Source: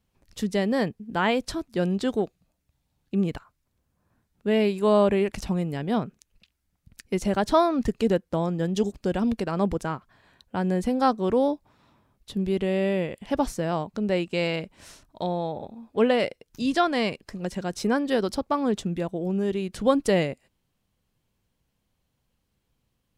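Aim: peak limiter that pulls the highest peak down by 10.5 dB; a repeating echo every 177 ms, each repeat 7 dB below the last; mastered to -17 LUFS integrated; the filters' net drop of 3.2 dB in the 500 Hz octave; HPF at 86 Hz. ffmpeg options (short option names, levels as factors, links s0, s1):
-af "highpass=86,equalizer=f=500:t=o:g=-4,alimiter=limit=0.1:level=0:latency=1,aecho=1:1:177|354|531|708|885:0.447|0.201|0.0905|0.0407|0.0183,volume=4.47"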